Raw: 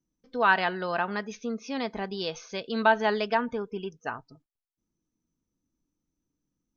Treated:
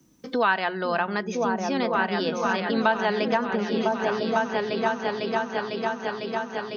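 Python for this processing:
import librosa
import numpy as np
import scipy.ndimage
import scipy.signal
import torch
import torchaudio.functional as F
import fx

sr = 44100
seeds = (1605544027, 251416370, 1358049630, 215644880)

p1 = scipy.signal.sosfilt(scipy.signal.butter(2, 77.0, 'highpass', fs=sr, output='sos'), x)
p2 = fx.hum_notches(p1, sr, base_hz=60, count=3)
p3 = p2 + fx.echo_opening(p2, sr, ms=501, hz=200, octaves=2, feedback_pct=70, wet_db=0, dry=0)
p4 = fx.band_squash(p3, sr, depth_pct=70)
y = p4 * 10.0 ** (2.5 / 20.0)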